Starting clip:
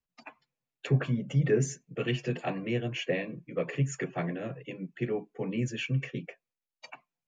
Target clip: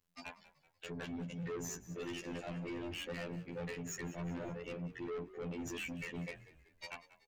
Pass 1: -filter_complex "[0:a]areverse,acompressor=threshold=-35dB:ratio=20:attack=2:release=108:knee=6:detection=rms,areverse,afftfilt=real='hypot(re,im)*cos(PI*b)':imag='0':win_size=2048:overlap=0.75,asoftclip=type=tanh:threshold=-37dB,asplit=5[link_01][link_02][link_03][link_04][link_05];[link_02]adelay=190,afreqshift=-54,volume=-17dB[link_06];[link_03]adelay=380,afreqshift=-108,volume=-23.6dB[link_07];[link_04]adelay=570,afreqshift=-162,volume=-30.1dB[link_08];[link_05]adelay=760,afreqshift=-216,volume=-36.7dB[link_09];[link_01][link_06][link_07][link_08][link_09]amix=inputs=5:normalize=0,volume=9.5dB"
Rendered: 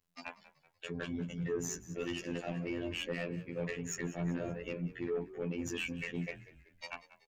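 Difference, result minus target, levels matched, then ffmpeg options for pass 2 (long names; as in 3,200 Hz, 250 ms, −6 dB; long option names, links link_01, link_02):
soft clipping: distortion −7 dB
-filter_complex "[0:a]areverse,acompressor=threshold=-35dB:ratio=20:attack=2:release=108:knee=6:detection=rms,areverse,afftfilt=real='hypot(re,im)*cos(PI*b)':imag='0':win_size=2048:overlap=0.75,asoftclip=type=tanh:threshold=-47.5dB,asplit=5[link_01][link_02][link_03][link_04][link_05];[link_02]adelay=190,afreqshift=-54,volume=-17dB[link_06];[link_03]adelay=380,afreqshift=-108,volume=-23.6dB[link_07];[link_04]adelay=570,afreqshift=-162,volume=-30.1dB[link_08];[link_05]adelay=760,afreqshift=-216,volume=-36.7dB[link_09];[link_01][link_06][link_07][link_08][link_09]amix=inputs=5:normalize=0,volume=9.5dB"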